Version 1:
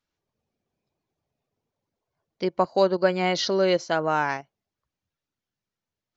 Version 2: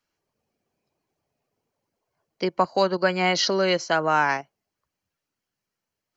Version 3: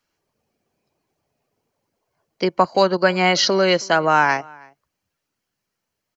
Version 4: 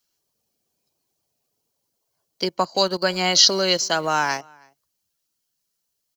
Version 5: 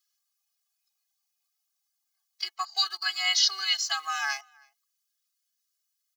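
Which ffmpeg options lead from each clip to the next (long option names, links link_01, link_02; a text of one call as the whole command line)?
ffmpeg -i in.wav -filter_complex "[0:a]lowshelf=frequency=180:gain=-7.5,bandreject=frequency=3600:width=7,acrossover=split=280|770[link_01][link_02][link_03];[link_02]acompressor=threshold=-32dB:ratio=6[link_04];[link_01][link_04][link_03]amix=inputs=3:normalize=0,volume=5dB" out.wav
ffmpeg -i in.wav -filter_complex "[0:a]asplit=2[link_01][link_02];[link_02]adelay=320.7,volume=-25dB,highshelf=frequency=4000:gain=-7.22[link_03];[link_01][link_03]amix=inputs=2:normalize=0,volume=5dB" out.wav
ffmpeg -i in.wav -filter_complex "[0:a]aexciter=amount=5.4:drive=1.4:freq=3200,asplit=2[link_01][link_02];[link_02]aeval=exprs='val(0)*gte(abs(val(0)),0.0708)':channel_layout=same,volume=-10dB[link_03];[link_01][link_03]amix=inputs=2:normalize=0,volume=-8dB" out.wav
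ffmpeg -i in.wav -filter_complex "[0:a]highpass=frequency=1100:width=0.5412,highpass=frequency=1100:width=1.3066,acrossover=split=3000[link_01][link_02];[link_02]alimiter=limit=-11.5dB:level=0:latency=1:release=233[link_03];[link_01][link_03]amix=inputs=2:normalize=0,afftfilt=real='re*eq(mod(floor(b*sr/1024/220),2),1)':imag='im*eq(mod(floor(b*sr/1024/220),2),1)':win_size=1024:overlap=0.75" out.wav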